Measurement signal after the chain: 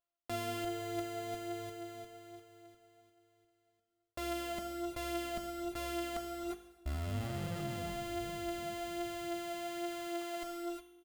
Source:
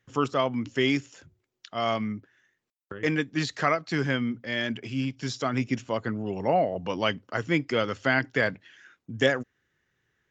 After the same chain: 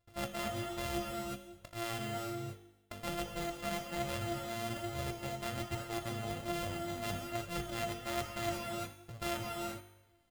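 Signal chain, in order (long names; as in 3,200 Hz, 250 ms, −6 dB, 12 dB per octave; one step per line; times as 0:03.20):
samples sorted by size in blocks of 128 samples
low-shelf EQ 140 Hz +4.5 dB
notch filter 6,100 Hz, Q 12
reverb whose tail is shaped and stops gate 390 ms rising, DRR 6.5 dB
reversed playback
downward compressor 6 to 1, threshold −35 dBFS
reversed playback
tuned comb filter 50 Hz, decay 0.99 s, harmonics all, mix 70%
flanger 1.2 Hz, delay 1.7 ms, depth 3.2 ms, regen +46%
comb filter 1.5 ms, depth 48%
level +12 dB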